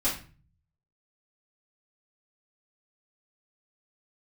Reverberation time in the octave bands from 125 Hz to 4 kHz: 0.90, 0.60, 0.40, 0.35, 0.35, 0.30 s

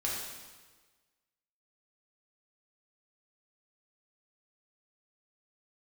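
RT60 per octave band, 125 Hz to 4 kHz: 1.4, 1.4, 1.4, 1.4, 1.3, 1.3 s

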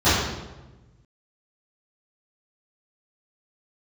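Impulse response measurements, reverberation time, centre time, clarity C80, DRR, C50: 1.1 s, 82 ms, 2.5 dB, -18.0 dB, -1.0 dB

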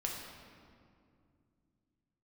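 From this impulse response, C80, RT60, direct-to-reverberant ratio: 3.5 dB, 2.4 s, -1.5 dB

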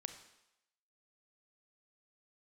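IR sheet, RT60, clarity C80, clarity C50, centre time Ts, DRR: 0.85 s, 12.0 dB, 9.5 dB, 13 ms, 8.0 dB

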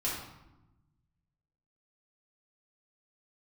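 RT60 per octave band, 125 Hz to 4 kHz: 1.9, 1.5, 1.0, 0.95, 0.75, 0.65 s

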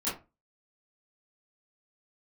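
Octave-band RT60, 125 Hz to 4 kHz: 0.30, 0.30, 0.30, 0.25, 0.25, 0.15 s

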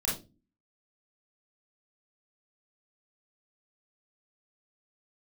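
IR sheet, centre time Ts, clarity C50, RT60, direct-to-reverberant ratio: 36 ms, 5.5 dB, 0.30 s, -5.5 dB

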